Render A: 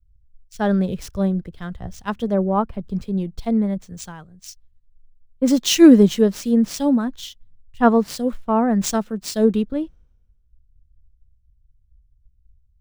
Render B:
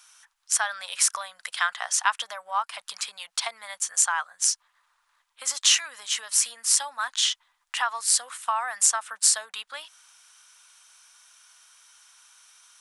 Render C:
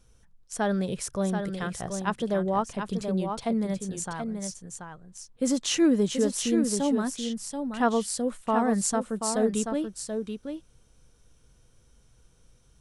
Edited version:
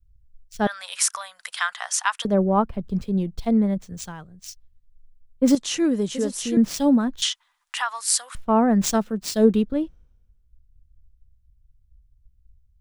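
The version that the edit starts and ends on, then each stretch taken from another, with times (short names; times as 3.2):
A
0.67–2.25 from B
5.55–6.57 from C
7.22–8.35 from B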